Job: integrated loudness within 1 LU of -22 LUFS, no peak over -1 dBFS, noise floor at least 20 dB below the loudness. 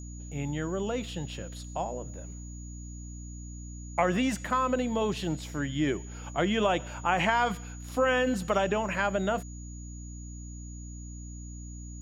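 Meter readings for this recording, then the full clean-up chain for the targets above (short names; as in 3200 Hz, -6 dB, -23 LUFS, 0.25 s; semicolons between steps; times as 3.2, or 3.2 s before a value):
hum 60 Hz; harmonics up to 300 Hz; hum level -39 dBFS; steady tone 6800 Hz; tone level -49 dBFS; loudness -29.5 LUFS; peak -11.0 dBFS; loudness target -22.0 LUFS
-> notches 60/120/180/240/300 Hz; notch 6800 Hz, Q 30; gain +7.5 dB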